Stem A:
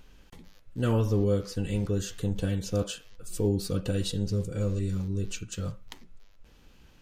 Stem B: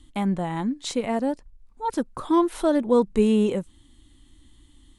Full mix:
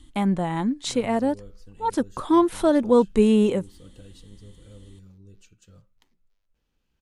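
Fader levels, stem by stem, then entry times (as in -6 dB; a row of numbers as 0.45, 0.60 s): -19.0, +2.0 dB; 0.10, 0.00 s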